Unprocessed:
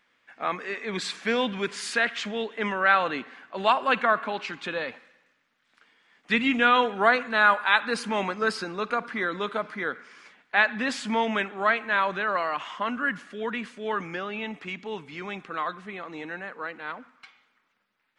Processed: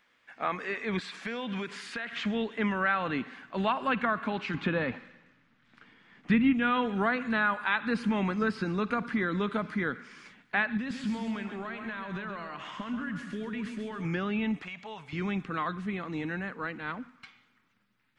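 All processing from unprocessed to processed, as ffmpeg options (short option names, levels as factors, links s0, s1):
-filter_complex "[0:a]asettb=1/sr,asplit=3[s0][s1][s2];[s0]atrim=end=0.994[s3];[s1]atrim=start=0.99:end=2.13,asetpts=PTS-STARTPTS,afade=t=in:d=0.004:c=qsin,afade=t=out:st=1.136:d=0.004:c=qsin,highpass=f=260:p=1,acompressor=threshold=0.0251:ratio=5:attack=3.2:release=140:knee=1:detection=peak[s4];[s2]atrim=start=2.126[s5];[s3][s4]acrossfade=d=0.004:c1=hsin:c2=qsin[s6];[s6][s5]acrossfade=d=0.004:c1=qsin:c2=hsin,asettb=1/sr,asplit=3[s7][s8][s9];[s7]atrim=end=4.544[s10];[s8]atrim=start=4.54:end=6.53,asetpts=PTS-STARTPTS,afade=t=in:d=0.004:c=qsin,afade=t=out:st=1.986:d=0.004:c=qsin,aemphasis=mode=reproduction:type=75fm,acontrast=36[s11];[s9]atrim=start=6.526[s12];[s10][s11]acrossfade=d=0.004:c1=hsin:c2=qsin[s13];[s13][s12]acrossfade=d=0.004:c1=qsin:c2=hsin,asettb=1/sr,asplit=3[s14][s15][s16];[s14]atrim=end=10.774[s17];[s15]atrim=start=10.77:end=14.05,asetpts=PTS-STARTPTS,afade=t=in:d=0.004:c=qsin,afade=t=out:st=3.276:d=0.004:c=qsin,acompressor=threshold=0.0141:ratio=4:attack=3.2:release=140:knee=1:detection=peak,aecho=1:1:133|266|399|532|665:0.398|0.171|0.0736|0.0317|0.0136,atrim=end_sample=144648[s18];[s16]atrim=start=14.046[s19];[s17][s18]acrossfade=d=0.004:c1=hsin:c2=qsin[s20];[s20][s19]acrossfade=d=0.004:c1=qsin:c2=hsin,asettb=1/sr,asplit=3[s21][s22][s23];[s21]atrim=end=14.624[s24];[s22]atrim=start=14.62:end=15.13,asetpts=PTS-STARTPTS,afade=t=in:d=0.004:c=qsin,afade=t=out:st=0.506:d=0.004:c=qsin,lowshelf=f=450:t=q:w=3:g=-12,acompressor=threshold=0.0158:ratio=4:attack=3.2:release=140:knee=1:detection=peak[s25];[s23]atrim=start=15.126[s26];[s24][s25]acrossfade=d=0.004:c1=hsin:c2=qsin[s27];[s27][s26]acrossfade=d=0.004:c1=qsin:c2=hsin,acrossover=split=3400[s28][s29];[s29]acompressor=threshold=0.00282:ratio=4:attack=1:release=60[s30];[s28][s30]amix=inputs=2:normalize=0,asubboost=boost=5.5:cutoff=230,acompressor=threshold=0.0501:ratio=2.5"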